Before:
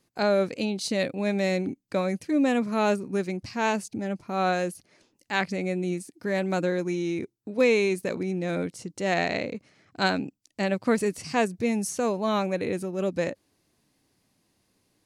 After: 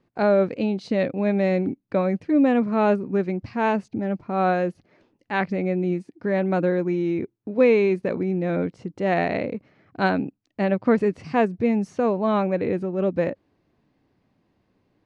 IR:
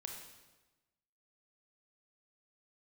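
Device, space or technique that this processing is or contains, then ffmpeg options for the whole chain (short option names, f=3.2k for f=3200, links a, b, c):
phone in a pocket: -af "lowpass=3.3k,highshelf=f=2.2k:g=-10.5,volume=5dB"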